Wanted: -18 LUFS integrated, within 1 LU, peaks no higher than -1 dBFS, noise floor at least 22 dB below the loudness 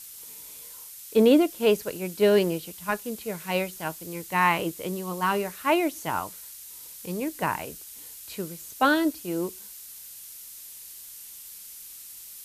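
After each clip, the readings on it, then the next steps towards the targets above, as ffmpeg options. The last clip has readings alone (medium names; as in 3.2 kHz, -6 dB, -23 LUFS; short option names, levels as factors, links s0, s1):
noise floor -44 dBFS; noise floor target -48 dBFS; loudness -26.0 LUFS; peak level -8.0 dBFS; loudness target -18.0 LUFS
-> -af "afftdn=nr=6:nf=-44"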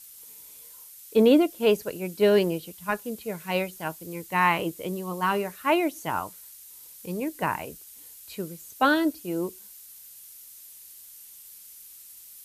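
noise floor -48 dBFS; loudness -26.0 LUFS; peak level -8.0 dBFS; loudness target -18.0 LUFS
-> -af "volume=2.51,alimiter=limit=0.891:level=0:latency=1"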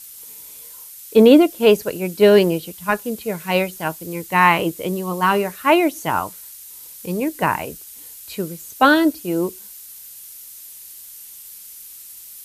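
loudness -18.0 LUFS; peak level -1.0 dBFS; noise floor -40 dBFS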